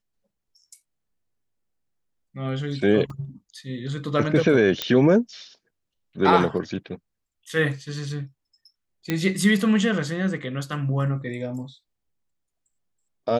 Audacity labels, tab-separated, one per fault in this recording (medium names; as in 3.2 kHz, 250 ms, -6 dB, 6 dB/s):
3.100000	3.100000	dropout 3.1 ms
4.820000	4.820000	pop -8 dBFS
9.100000	9.100000	pop -10 dBFS